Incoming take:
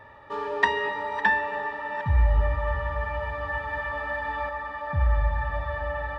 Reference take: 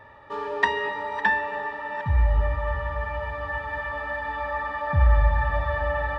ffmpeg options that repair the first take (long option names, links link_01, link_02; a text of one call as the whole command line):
ffmpeg -i in.wav -af "asetnsamples=nb_out_samples=441:pad=0,asendcmd='4.49 volume volume 4.5dB',volume=0dB" out.wav